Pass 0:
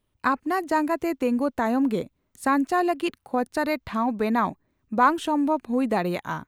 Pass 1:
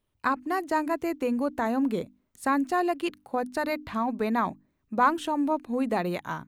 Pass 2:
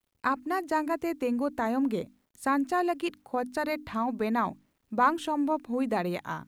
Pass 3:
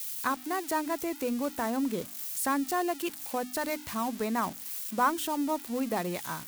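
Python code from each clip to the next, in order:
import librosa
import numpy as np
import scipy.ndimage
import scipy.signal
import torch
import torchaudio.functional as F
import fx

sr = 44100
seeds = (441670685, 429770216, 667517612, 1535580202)

y1 = fx.hum_notches(x, sr, base_hz=50, count=6)
y1 = y1 * librosa.db_to_amplitude(-3.0)
y2 = fx.quant_dither(y1, sr, seeds[0], bits=12, dither='none')
y2 = y2 * librosa.db_to_amplitude(-1.5)
y3 = y2 + 0.5 * 10.0 ** (-25.5 / 20.0) * np.diff(np.sign(y2), prepend=np.sign(y2[:1]))
y3 = y3 * librosa.db_to_amplitude(-2.5)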